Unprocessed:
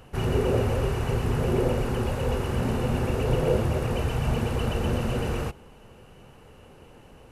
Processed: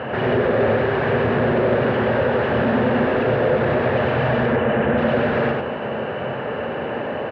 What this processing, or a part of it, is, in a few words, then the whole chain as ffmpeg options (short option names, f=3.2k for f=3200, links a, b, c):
overdrive pedal into a guitar cabinet: -filter_complex "[0:a]asplit=2[a][b];[b]highpass=f=720:p=1,volume=41dB,asoftclip=type=tanh:threshold=-10.5dB[c];[a][c]amix=inputs=2:normalize=0,lowpass=f=1.2k:p=1,volume=-6dB,highpass=82,equalizer=f=88:t=q:w=4:g=5,equalizer=f=130:t=q:w=4:g=7,equalizer=f=230:t=q:w=4:g=8,equalizer=f=410:t=q:w=4:g=3,equalizer=f=600:t=q:w=4:g=9,equalizer=f=1.7k:t=q:w=4:g=9,lowpass=f=3.5k:w=0.5412,lowpass=f=3.5k:w=1.3066,asettb=1/sr,asplit=3[d][e][f];[d]atrim=end=4.464[g];[e]atrim=start=4.46:end=4.98,asetpts=PTS-STARTPTS,afade=t=in:d=0.004:c=qsin,afade=t=out:st=0.516:d=0.004:c=qsin,lowpass=f=2.9k:w=0.5412,lowpass=f=2.9k:w=1.3066[h];[f]atrim=start=4.976[i];[g][h]acrossfade=d=0.004:c1=hsin:c2=qsin[j];[j][i]acrossfade=d=0.004:c1=qsin:c2=hsin,aecho=1:1:96:0.708,volume=-6.5dB"